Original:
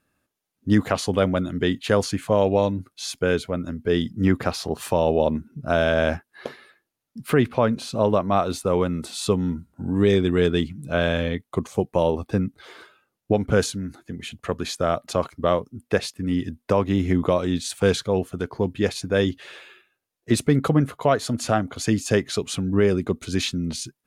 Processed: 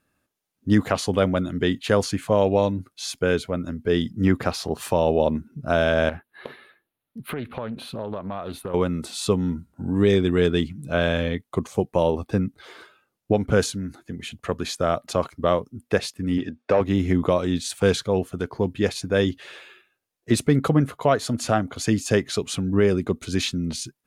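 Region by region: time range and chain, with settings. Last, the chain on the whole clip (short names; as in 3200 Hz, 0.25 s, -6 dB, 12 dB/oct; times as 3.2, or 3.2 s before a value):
6.09–8.74 compressor 4:1, threshold -28 dBFS + band shelf 6300 Hz -14.5 dB 1 oct + Doppler distortion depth 0.27 ms
16.38–16.81 LPF 6900 Hz + notch comb 1000 Hz + overdrive pedal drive 14 dB, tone 1700 Hz, clips at -8.5 dBFS
whole clip: dry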